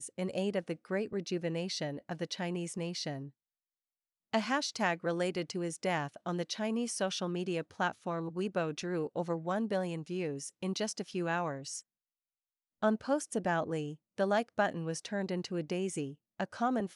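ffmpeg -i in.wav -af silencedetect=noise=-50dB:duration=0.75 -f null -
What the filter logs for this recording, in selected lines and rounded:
silence_start: 3.29
silence_end: 4.33 | silence_duration: 1.04
silence_start: 11.81
silence_end: 12.82 | silence_duration: 1.02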